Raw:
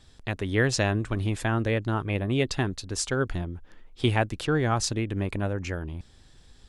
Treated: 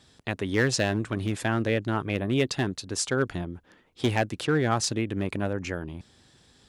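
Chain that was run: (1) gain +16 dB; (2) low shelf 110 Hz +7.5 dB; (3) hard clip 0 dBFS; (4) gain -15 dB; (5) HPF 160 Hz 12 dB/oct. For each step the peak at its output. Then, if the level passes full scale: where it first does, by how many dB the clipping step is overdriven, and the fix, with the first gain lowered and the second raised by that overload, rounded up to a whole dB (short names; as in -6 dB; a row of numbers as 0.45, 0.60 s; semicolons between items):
+6.0, +8.0, 0.0, -15.0, -9.0 dBFS; step 1, 8.0 dB; step 1 +8 dB, step 4 -7 dB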